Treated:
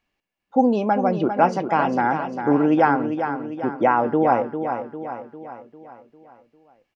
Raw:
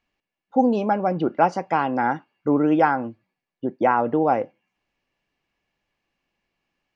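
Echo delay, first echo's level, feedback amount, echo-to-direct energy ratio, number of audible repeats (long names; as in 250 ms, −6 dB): 400 ms, −8.0 dB, 51%, −6.5 dB, 5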